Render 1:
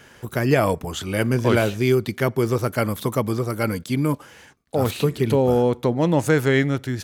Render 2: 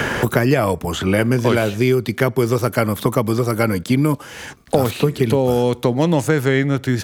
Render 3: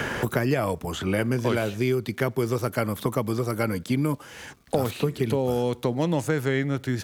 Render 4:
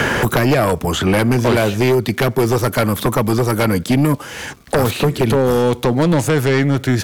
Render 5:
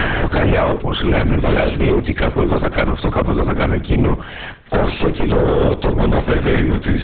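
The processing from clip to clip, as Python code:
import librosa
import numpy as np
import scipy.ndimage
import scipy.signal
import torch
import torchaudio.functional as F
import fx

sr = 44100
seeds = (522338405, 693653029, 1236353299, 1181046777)

y1 = fx.band_squash(x, sr, depth_pct=100)
y1 = y1 * librosa.db_to_amplitude(2.5)
y2 = fx.dmg_crackle(y1, sr, seeds[0], per_s=560.0, level_db=-46.0)
y2 = y2 * librosa.db_to_amplitude(-8.0)
y3 = fx.fold_sine(y2, sr, drive_db=9, ceiling_db=-9.0)
y4 = fx.echo_feedback(y3, sr, ms=74, feedback_pct=34, wet_db=-16)
y4 = fx.lpc_vocoder(y4, sr, seeds[1], excitation='whisper', order=10)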